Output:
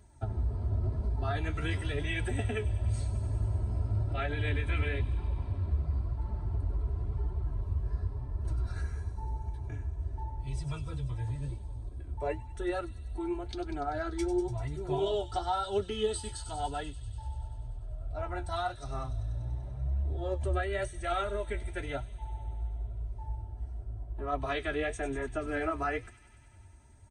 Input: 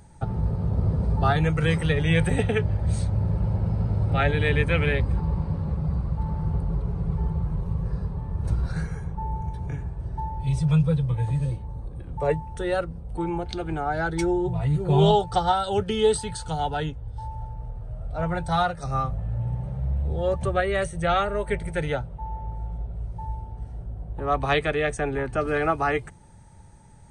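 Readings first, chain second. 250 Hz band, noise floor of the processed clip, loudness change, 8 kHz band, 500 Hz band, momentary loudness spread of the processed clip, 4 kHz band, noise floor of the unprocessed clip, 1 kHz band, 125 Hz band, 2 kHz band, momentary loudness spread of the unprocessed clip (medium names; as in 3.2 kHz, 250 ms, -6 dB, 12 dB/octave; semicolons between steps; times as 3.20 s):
-11.0 dB, -47 dBFS, -9.0 dB, -7.0 dB, -9.5 dB, 9 LU, -9.0 dB, -40 dBFS, -10.0 dB, -9.0 dB, -9.5 dB, 13 LU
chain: high-pass 46 Hz; bass shelf 83 Hz +9.5 dB; comb 3 ms, depth 97%; peak limiter -11 dBFS, peak gain reduction 6 dB; flange 0.95 Hz, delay 4.5 ms, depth 9.9 ms, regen +47%; on a send: feedback echo behind a high-pass 97 ms, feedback 78%, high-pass 4.7 kHz, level -8.5 dB; on the sum: trim -7 dB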